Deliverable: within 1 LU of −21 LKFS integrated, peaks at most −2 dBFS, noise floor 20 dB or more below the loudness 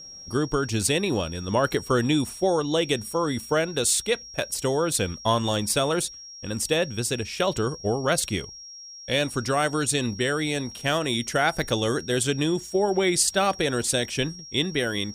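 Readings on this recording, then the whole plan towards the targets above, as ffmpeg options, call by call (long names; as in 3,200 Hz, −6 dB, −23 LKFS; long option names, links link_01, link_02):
interfering tone 5,600 Hz; level of the tone −40 dBFS; integrated loudness −24.5 LKFS; sample peak −8.0 dBFS; target loudness −21.0 LKFS
→ -af "bandreject=frequency=5600:width=30"
-af "volume=3.5dB"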